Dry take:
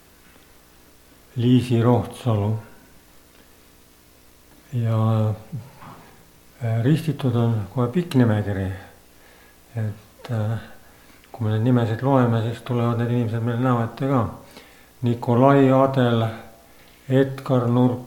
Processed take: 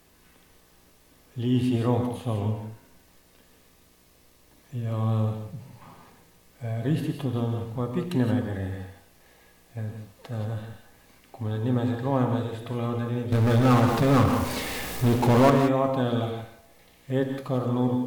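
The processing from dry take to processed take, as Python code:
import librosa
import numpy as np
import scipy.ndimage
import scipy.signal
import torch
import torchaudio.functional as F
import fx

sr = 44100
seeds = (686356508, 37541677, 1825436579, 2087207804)

y = fx.notch(x, sr, hz=1400.0, q=9.2)
y = fx.power_curve(y, sr, exponent=0.5, at=(13.32, 15.5))
y = fx.rev_gated(y, sr, seeds[0], gate_ms=200, shape='rising', drr_db=5.0)
y = y * 10.0 ** (-7.5 / 20.0)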